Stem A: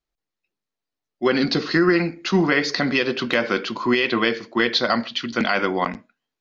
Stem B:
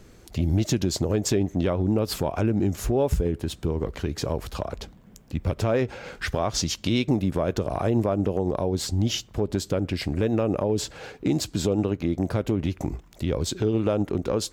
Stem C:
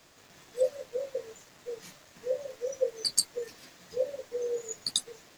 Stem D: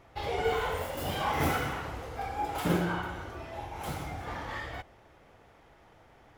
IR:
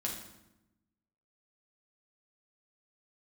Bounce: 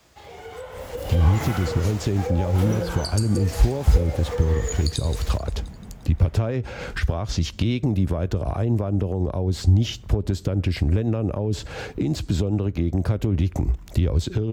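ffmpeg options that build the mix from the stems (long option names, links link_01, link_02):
-filter_complex "[1:a]acrossover=split=3900[link_01][link_02];[link_02]acompressor=threshold=-38dB:ratio=4:attack=1:release=60[link_03];[link_01][link_03]amix=inputs=2:normalize=0,alimiter=limit=-22dB:level=0:latency=1:release=346,adelay=750,volume=-5dB[link_04];[2:a]acompressor=threshold=-35dB:ratio=6,volume=-2dB,asplit=3[link_05][link_06][link_07];[link_06]volume=-7.5dB[link_08];[link_07]volume=-11.5dB[link_09];[3:a]highpass=frequency=280:poles=1,volume=-9dB[link_10];[4:a]atrim=start_sample=2205[link_11];[link_08][link_11]afir=irnorm=-1:irlink=0[link_12];[link_09]aecho=0:1:175|350|525|700|875|1050|1225|1400|1575:1|0.57|0.325|0.185|0.106|0.0602|0.0343|0.0195|0.0111[link_13];[link_04][link_05][link_10][link_12][link_13]amix=inputs=5:normalize=0,acrossover=split=230[link_14][link_15];[link_15]acompressor=threshold=-38dB:ratio=6[link_16];[link_14][link_16]amix=inputs=2:normalize=0,equalizer=frequency=63:width=0.74:gain=12,dynaudnorm=framelen=140:gausssize=13:maxgain=12dB"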